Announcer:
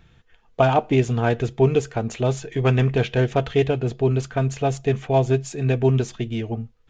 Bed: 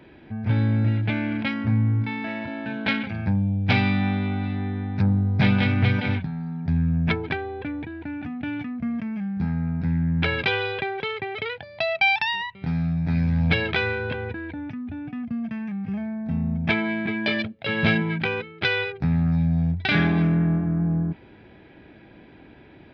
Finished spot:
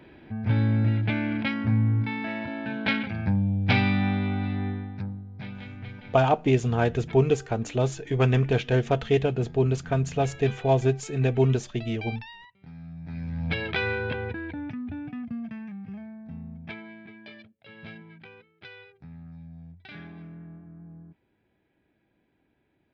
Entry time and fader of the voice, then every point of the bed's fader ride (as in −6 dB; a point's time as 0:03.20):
5.55 s, −3.0 dB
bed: 0:04.69 −1.5 dB
0:05.26 −19.5 dB
0:12.72 −19.5 dB
0:13.93 −1.5 dB
0:14.93 −1.5 dB
0:17.41 −23 dB